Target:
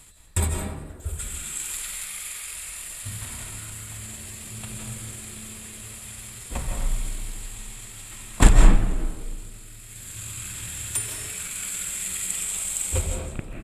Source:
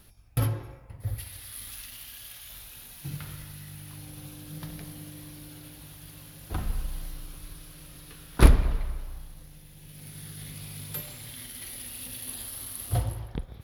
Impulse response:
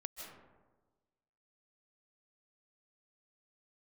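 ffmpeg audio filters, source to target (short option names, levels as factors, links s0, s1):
-filter_complex "[0:a]highshelf=f=2500:g=8.5,bandreject=f=4000:w=23,asetrate=32097,aresample=44100,atempo=1.37395,asplit=7[s0][s1][s2][s3][s4][s5][s6];[s1]adelay=90,afreqshift=71,volume=0.119[s7];[s2]adelay=180,afreqshift=142,volume=0.0724[s8];[s3]adelay=270,afreqshift=213,volume=0.0442[s9];[s4]adelay=360,afreqshift=284,volume=0.0269[s10];[s5]adelay=450,afreqshift=355,volume=0.0164[s11];[s6]adelay=540,afreqshift=426,volume=0.01[s12];[s0][s7][s8][s9][s10][s11][s12]amix=inputs=7:normalize=0[s13];[1:a]atrim=start_sample=2205,afade=t=out:st=0.35:d=0.01,atrim=end_sample=15876[s14];[s13][s14]afir=irnorm=-1:irlink=0,volume=2"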